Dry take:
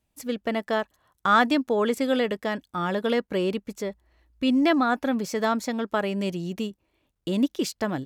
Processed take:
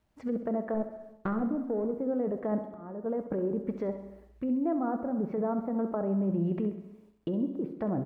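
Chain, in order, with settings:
0:00.74–0:01.95: running median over 41 samples
treble cut that deepens with the level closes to 730 Hz, closed at −23.5 dBFS
low-pass filter 1,300 Hz 12 dB per octave
low-shelf EQ 350 Hz −2.5 dB
in parallel at +2 dB: compressor whose output falls as the input rises −32 dBFS, ratio −0.5
on the sum: bit-depth reduction 12 bits, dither none
0:02.50–0:03.06: volume swells 554 ms
on a send: repeating echo 66 ms, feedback 51%, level −12 dB
on the sum: reverb whose tail is shaped and stops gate 430 ms falling, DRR 10.5 dB
level −7 dB

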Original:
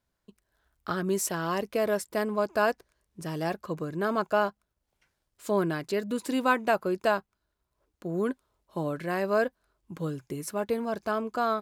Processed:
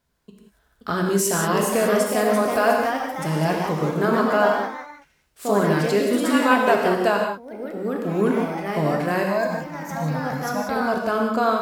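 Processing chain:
in parallel at +1 dB: brickwall limiter −21.5 dBFS, peak gain reduction 11 dB
0:09.23–0:10.76: on the sum: phaser with its sweep stopped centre 2,000 Hz, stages 8
delay with pitch and tempo change per echo 559 ms, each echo +2 semitones, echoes 3, each echo −6 dB
reverb whose tail is shaped and stops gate 210 ms flat, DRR 0.5 dB

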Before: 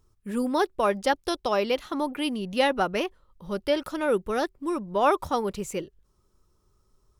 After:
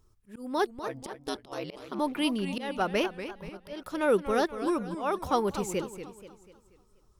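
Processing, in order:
0:00.87–0:01.99: ring modulation 69 Hz
volume swells 363 ms
feedback echo with a swinging delay time 242 ms, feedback 44%, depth 171 cents, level −11 dB

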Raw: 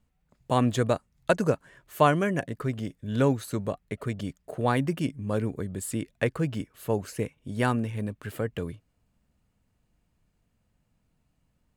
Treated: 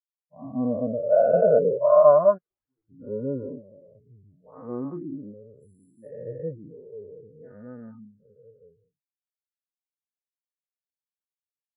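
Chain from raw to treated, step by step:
every bin's largest magnitude spread in time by 480 ms
high-shelf EQ 4,800 Hz +7 dB
0:02.34–0:02.85: wrap-around overflow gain 22 dB
multiband delay without the direct sound highs, lows 40 ms, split 5,800 Hz
every bin expanded away from the loudest bin 4 to 1
level −3 dB

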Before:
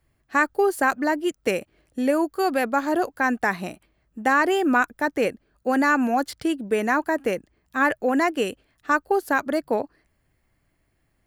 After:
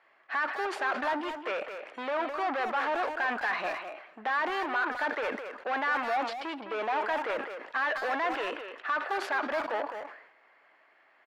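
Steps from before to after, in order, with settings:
gain on a spectral selection 0:06.02–0:06.97, 1,000–2,200 Hz −13 dB
brickwall limiter −18 dBFS, peak gain reduction 11.5 dB
mid-hump overdrive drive 31 dB, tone 1,500 Hz, clips at −12 dBFS
band-pass filter 740–2,900 Hz
far-end echo of a speakerphone 210 ms, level −7 dB
on a send at −21.5 dB: convolution reverb, pre-delay 3 ms
on the sum: level that may fall only so fast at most 74 dB per second
level −6 dB

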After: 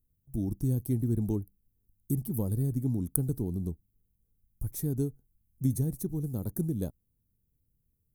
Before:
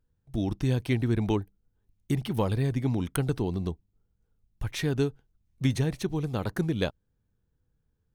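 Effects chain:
drawn EQ curve 260 Hz 0 dB, 2,800 Hz −29 dB, 12,000 Hz +15 dB
level −2 dB

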